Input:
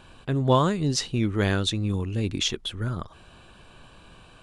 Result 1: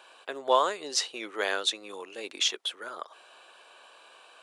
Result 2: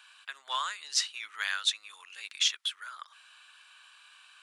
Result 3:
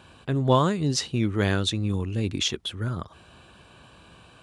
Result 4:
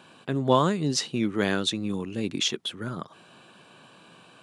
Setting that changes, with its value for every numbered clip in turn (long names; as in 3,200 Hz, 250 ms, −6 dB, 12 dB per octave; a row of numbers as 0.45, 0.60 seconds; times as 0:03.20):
high-pass filter, corner frequency: 480, 1,300, 54, 150 Hertz